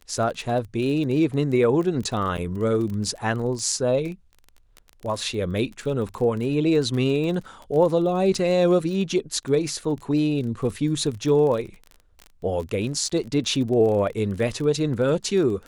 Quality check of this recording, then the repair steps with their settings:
surface crackle 26 per second −30 dBFS
0:02.37–0:02.38: drop-out 8.4 ms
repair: click removal
repair the gap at 0:02.37, 8.4 ms

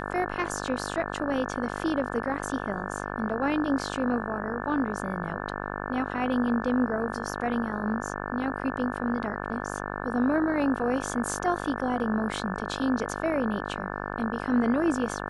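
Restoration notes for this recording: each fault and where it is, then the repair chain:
mains buzz 50 Hz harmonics 35 −34 dBFS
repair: hum removal 50 Hz, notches 35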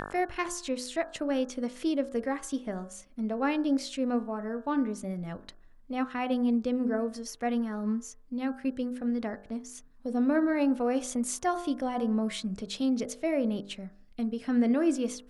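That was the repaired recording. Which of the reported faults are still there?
none of them is left

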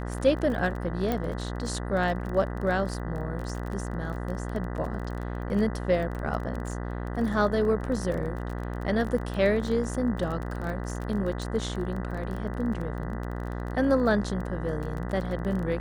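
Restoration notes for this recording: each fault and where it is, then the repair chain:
mains buzz 60 Hz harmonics 33 −33 dBFS
surface crackle 26 per second −33 dBFS
0:01.12: click −15 dBFS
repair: click removal
hum removal 60 Hz, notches 33

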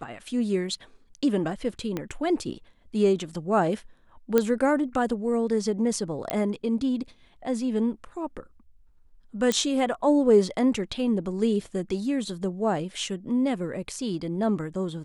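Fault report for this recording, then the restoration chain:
0:01.97: click −16 dBFS
0:04.38: click −8 dBFS
0:06.30: click −10 dBFS
0:09.52: click −11 dBFS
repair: click removal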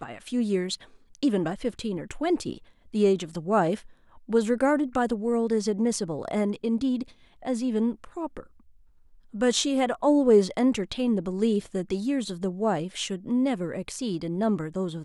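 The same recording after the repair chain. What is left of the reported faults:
0:01.97: click

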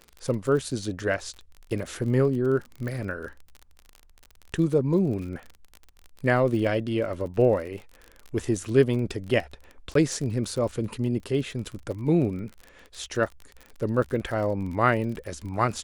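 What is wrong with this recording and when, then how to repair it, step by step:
surface crackle 35 per second −33 dBFS
0:02.88: click −23 dBFS
0:09.94–0:09.95: drop-out 13 ms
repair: click removal
repair the gap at 0:09.94, 13 ms

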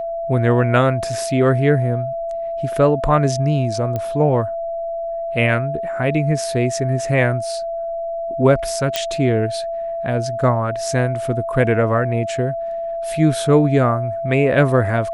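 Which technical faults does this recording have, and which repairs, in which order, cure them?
whistle 670 Hz −22 dBFS
0:03.96: click −12 dBFS
0:08.96: click −3 dBFS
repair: click removal
notch filter 670 Hz, Q 30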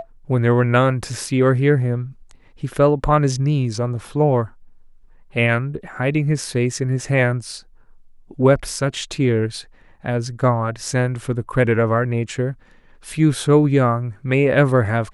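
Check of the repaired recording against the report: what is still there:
none of them is left

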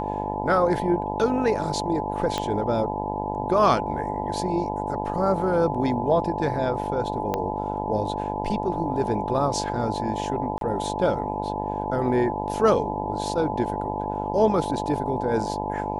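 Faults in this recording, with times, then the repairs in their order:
mains buzz 50 Hz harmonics 20 −30 dBFS
whistle 860 Hz −30 dBFS
0:02.38: click −12 dBFS
0:07.34: click −12 dBFS
0:10.58–0:10.61: drop-out 32 ms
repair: click removal
notch filter 860 Hz, Q 30
hum removal 50 Hz, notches 20
repair the gap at 0:10.58, 32 ms

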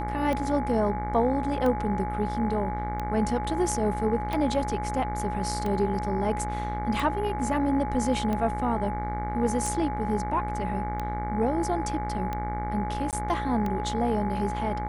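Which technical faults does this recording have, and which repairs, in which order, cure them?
mains buzz 60 Hz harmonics 38 −33 dBFS
scratch tick 45 rpm −18 dBFS
whistle 840 Hz −32 dBFS
0:13.11–0:13.13: drop-out 18 ms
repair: click removal
hum removal 60 Hz, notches 38
notch filter 840 Hz, Q 30
repair the gap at 0:13.11, 18 ms

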